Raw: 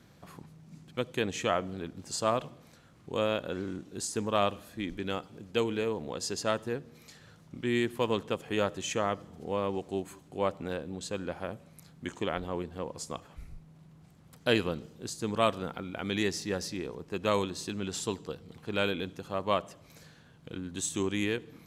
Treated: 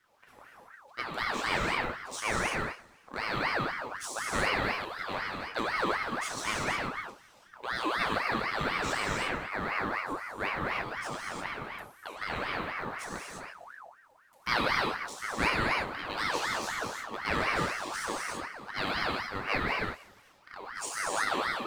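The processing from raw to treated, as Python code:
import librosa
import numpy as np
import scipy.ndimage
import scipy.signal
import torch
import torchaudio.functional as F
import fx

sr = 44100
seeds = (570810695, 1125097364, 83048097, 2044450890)

y = fx.law_mismatch(x, sr, coded='A')
y = fx.echo_thinned(y, sr, ms=89, feedback_pct=69, hz=220.0, wet_db=-21.0)
y = fx.rev_gated(y, sr, seeds[0], gate_ms=380, shape='flat', drr_db=-5.0)
y = fx.ring_lfo(y, sr, carrier_hz=1200.0, swing_pct=45, hz=4.0)
y = y * librosa.db_to_amplitude(-2.0)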